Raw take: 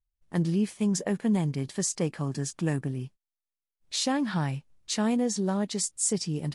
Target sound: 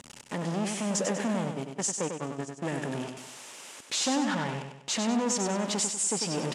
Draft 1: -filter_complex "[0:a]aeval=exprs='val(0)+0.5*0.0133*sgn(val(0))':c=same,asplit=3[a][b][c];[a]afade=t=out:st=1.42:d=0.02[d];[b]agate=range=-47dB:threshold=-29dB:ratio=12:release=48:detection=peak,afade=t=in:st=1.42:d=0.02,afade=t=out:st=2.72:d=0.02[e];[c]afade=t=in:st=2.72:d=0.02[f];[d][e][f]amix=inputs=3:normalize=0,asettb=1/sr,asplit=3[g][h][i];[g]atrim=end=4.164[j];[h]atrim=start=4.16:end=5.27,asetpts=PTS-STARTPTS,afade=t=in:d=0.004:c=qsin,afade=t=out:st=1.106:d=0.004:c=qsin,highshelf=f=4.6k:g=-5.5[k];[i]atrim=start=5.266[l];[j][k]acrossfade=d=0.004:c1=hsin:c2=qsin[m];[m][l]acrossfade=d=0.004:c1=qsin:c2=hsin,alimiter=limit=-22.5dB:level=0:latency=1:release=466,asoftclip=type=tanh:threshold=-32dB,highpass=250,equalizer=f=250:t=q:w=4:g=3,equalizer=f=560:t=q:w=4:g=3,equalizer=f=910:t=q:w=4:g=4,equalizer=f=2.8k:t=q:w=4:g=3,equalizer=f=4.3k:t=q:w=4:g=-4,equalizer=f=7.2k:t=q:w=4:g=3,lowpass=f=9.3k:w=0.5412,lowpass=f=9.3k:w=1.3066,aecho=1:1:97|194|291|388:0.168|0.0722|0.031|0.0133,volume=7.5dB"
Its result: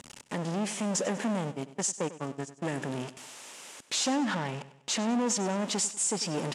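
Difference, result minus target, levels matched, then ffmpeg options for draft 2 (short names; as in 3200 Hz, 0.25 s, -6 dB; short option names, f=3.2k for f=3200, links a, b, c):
echo-to-direct -9.5 dB
-filter_complex "[0:a]aeval=exprs='val(0)+0.5*0.0133*sgn(val(0))':c=same,asplit=3[a][b][c];[a]afade=t=out:st=1.42:d=0.02[d];[b]agate=range=-47dB:threshold=-29dB:ratio=12:release=48:detection=peak,afade=t=in:st=1.42:d=0.02,afade=t=out:st=2.72:d=0.02[e];[c]afade=t=in:st=2.72:d=0.02[f];[d][e][f]amix=inputs=3:normalize=0,asettb=1/sr,asplit=3[g][h][i];[g]atrim=end=4.164[j];[h]atrim=start=4.16:end=5.27,asetpts=PTS-STARTPTS,afade=t=in:d=0.004:c=qsin,afade=t=out:st=1.106:d=0.004:c=qsin,highshelf=f=4.6k:g=-5.5[k];[i]atrim=start=5.266[l];[j][k]acrossfade=d=0.004:c1=hsin:c2=qsin[m];[m][l]acrossfade=d=0.004:c1=qsin:c2=hsin,alimiter=limit=-22.5dB:level=0:latency=1:release=466,asoftclip=type=tanh:threshold=-32dB,highpass=250,equalizer=f=250:t=q:w=4:g=3,equalizer=f=560:t=q:w=4:g=3,equalizer=f=910:t=q:w=4:g=4,equalizer=f=2.8k:t=q:w=4:g=3,equalizer=f=4.3k:t=q:w=4:g=-4,equalizer=f=7.2k:t=q:w=4:g=3,lowpass=f=9.3k:w=0.5412,lowpass=f=9.3k:w=1.3066,aecho=1:1:97|194|291|388|485:0.501|0.216|0.0927|0.0398|0.0171,volume=7.5dB"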